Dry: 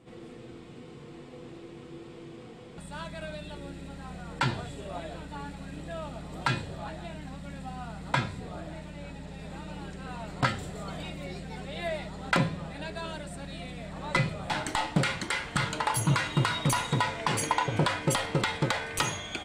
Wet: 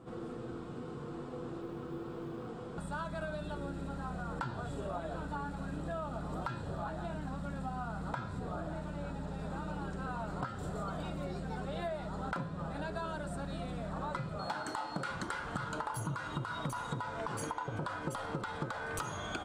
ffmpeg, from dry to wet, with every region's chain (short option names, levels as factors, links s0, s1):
-filter_complex "[0:a]asettb=1/sr,asplit=3[s0][s1][s2];[s0]atrim=end=1.614[s3];[s1]atrim=start=1.61:end=2.48,asetpts=PTS-STARTPTS,afade=t=in:d=0.004:c=qsin,afade=t=out:st=0.866:d=0.004:c=qsin,highshelf=f=9300:g=-10,acrusher=bits=8:mode=log:mix=0:aa=0.000001[s4];[s2]atrim=start=2.476[s5];[s3][s4]acrossfade=d=0.004:c1=hsin:c2=qsin[s6];[s6][s5]acrossfade=d=0.004:c1=qsin:c2=hsin,asettb=1/sr,asplit=3[s7][s8][s9];[s7]atrim=end=14.394[s10];[s8]atrim=start=14.39:end=15.11,asetpts=PTS-STARTPTS,afade=t=in:d=0.004:c=qsin,afade=t=out:st=0.716:d=0.004:c=qsin,highpass=f=220:p=1,aeval=exprs='val(0)+0.00891*sin(2*PI*4300*n/s)':c=same[s11];[s9]atrim=start=15.106[s12];[s10][s11]acrossfade=d=0.004:c1=hsin:c2=qsin[s13];[s13][s12]acrossfade=d=0.004:c1=qsin:c2=hsin,highshelf=f=1700:t=q:w=3:g=-6,alimiter=limit=0.1:level=0:latency=1:release=239,acompressor=threshold=0.0126:ratio=6,volume=1.41"